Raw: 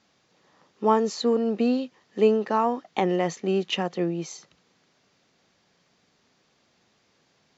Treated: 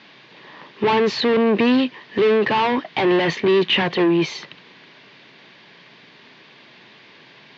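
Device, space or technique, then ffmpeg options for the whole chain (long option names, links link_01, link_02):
overdrive pedal into a guitar cabinet: -filter_complex "[0:a]asplit=2[link_01][link_02];[link_02]highpass=frequency=720:poles=1,volume=32dB,asoftclip=type=tanh:threshold=-6.5dB[link_03];[link_01][link_03]amix=inputs=2:normalize=0,lowpass=frequency=3400:poles=1,volume=-6dB,highpass=100,equalizer=frequency=130:width_type=q:width=4:gain=8,equalizer=frequency=520:width_type=q:width=4:gain=-7,equalizer=frequency=750:width_type=q:width=4:gain=-9,equalizer=frequency=1300:width_type=q:width=4:gain=-10,lowpass=frequency=3900:width=0.5412,lowpass=frequency=3900:width=1.3066"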